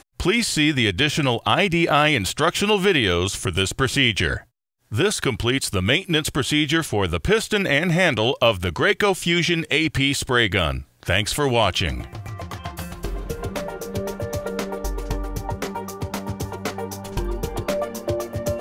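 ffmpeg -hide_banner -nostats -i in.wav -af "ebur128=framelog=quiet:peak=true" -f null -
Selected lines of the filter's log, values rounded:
Integrated loudness:
  I:         -21.2 LUFS
  Threshold: -31.5 LUFS
Loudness range:
  LRA:        10.1 LU
  Threshold: -41.6 LUFS
  LRA low:   -29.2 LUFS
  LRA high:  -19.1 LUFS
True peak:
  Peak:       -3.8 dBFS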